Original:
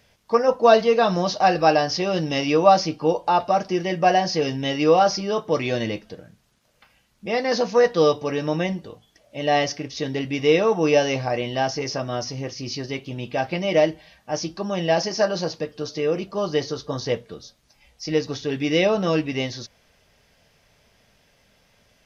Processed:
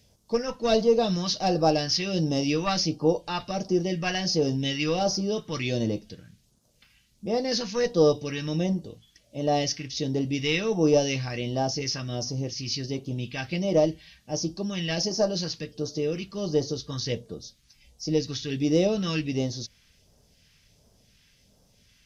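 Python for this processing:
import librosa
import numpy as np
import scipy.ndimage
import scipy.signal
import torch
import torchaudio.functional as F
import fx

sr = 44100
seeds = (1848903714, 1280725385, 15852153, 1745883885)

y = fx.diode_clip(x, sr, knee_db=-3.0)
y = fx.phaser_stages(y, sr, stages=2, low_hz=590.0, high_hz=2000.0, hz=1.4, feedback_pct=40)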